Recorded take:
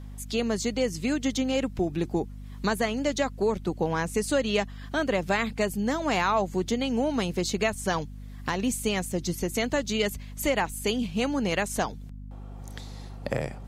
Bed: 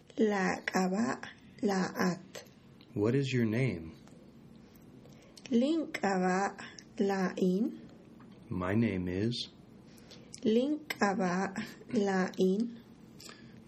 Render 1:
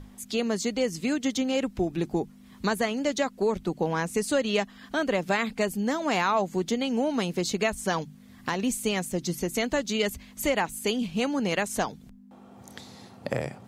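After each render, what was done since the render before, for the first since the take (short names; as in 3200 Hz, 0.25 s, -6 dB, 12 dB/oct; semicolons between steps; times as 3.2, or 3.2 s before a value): notches 50/100/150 Hz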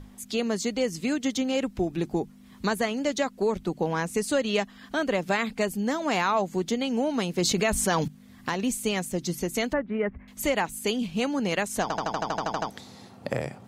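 7.38–8.08 fast leveller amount 70%; 9.73–10.28 steep low-pass 2000 Hz; 11.82 stutter in place 0.08 s, 11 plays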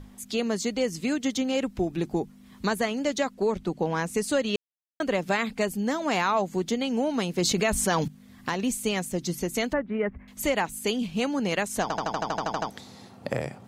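3.34–3.93 high shelf 12000 Hz -10 dB; 4.56–5 mute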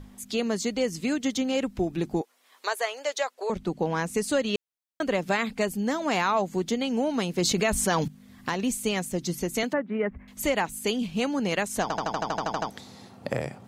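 2.21–3.5 inverse Chebyshev high-pass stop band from 190 Hz, stop band 50 dB; 9.63–10.11 HPF 140 Hz 24 dB/oct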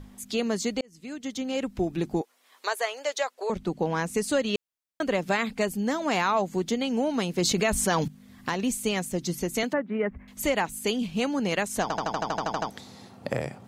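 0.81–1.84 fade in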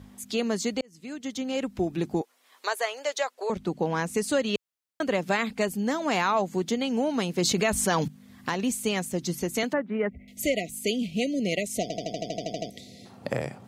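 HPF 63 Hz; 10.1–13.05 spectral delete 740–1900 Hz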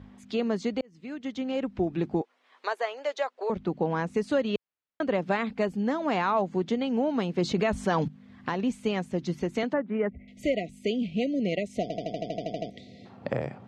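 LPF 2900 Hz 12 dB/oct; dynamic EQ 2200 Hz, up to -4 dB, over -40 dBFS, Q 0.98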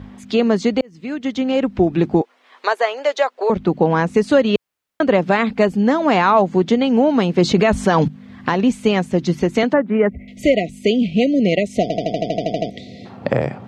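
gain +12 dB; limiter -3 dBFS, peak gain reduction 2.5 dB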